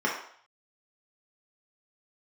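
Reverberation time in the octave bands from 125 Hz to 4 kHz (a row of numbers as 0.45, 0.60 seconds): 0.35, 0.45, 0.55, 0.60, 0.60, 0.55 seconds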